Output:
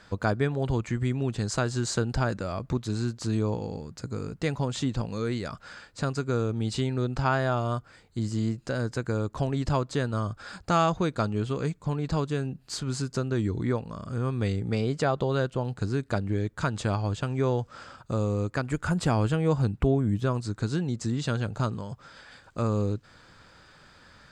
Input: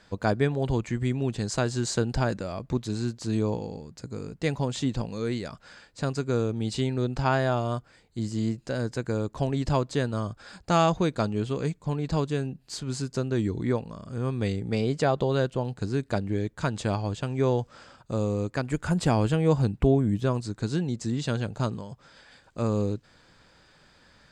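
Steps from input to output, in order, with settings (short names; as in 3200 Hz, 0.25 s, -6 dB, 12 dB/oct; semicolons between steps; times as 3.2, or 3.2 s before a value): bell 1300 Hz +5.5 dB 0.53 oct; in parallel at +2.5 dB: compressor, threshold -32 dBFS, peak gain reduction 15 dB; on the sum: bell 96 Hz +3.5 dB 0.77 oct; gain -5 dB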